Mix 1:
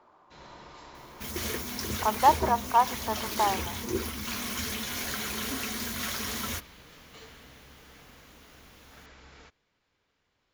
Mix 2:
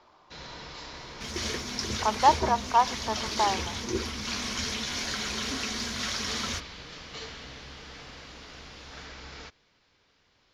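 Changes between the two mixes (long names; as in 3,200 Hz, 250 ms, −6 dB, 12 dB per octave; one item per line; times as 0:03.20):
first sound +7.5 dB
master: add low-pass with resonance 5,300 Hz, resonance Q 1.9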